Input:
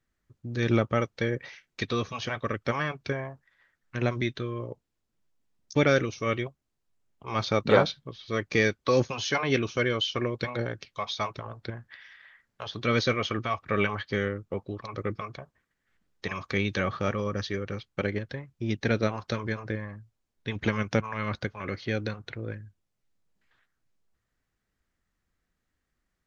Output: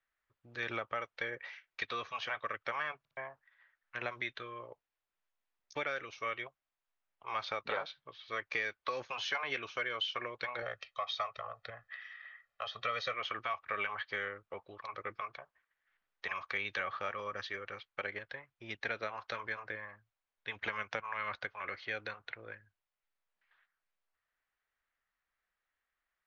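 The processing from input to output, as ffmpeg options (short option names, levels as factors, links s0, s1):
-filter_complex "[0:a]asettb=1/sr,asplit=3[s0][s1][s2];[s0]atrim=end=10.624[s3];[s1]atrim=start=10.62:end=13.14,asetpts=PTS-STARTPTS,afade=t=in:d=0.004:c=qsin,afade=t=out:st=2.516:d=0.004:c=qsin,aecho=1:1:1.6:0.81,atrim=end_sample=111132[s4];[s2]atrim=start=13.136[s5];[s3][s4]acrossfade=d=0.004:c1=hsin:c2=qsin[s6];[s6][s5]acrossfade=d=0.004:c1=qsin:c2=hsin,asplit=4[s7][s8][s9][s10];[s7]atrim=end=3.052[s11];[s8]atrim=start=2.988:end=3.052[s12];[s9]atrim=start=2.988:end=3.052[s13];[s10]atrim=start=3.168[s14];[s11][s12]acrossfade=d=0.004:c1=hsin:c2=hsin[s15];[s15][s13]acrossfade=d=0.004:c1=hsin:c2=hsin[s16];[s16][s14]acrossfade=d=0.004:c1=hsin:c2=hsin,acrossover=split=510 3400:gain=0.158 1 0.141[s17][s18][s19];[s17][s18][s19]amix=inputs=3:normalize=0,acompressor=threshold=0.0316:ratio=6,equalizer=f=190:w=0.33:g=-8.5"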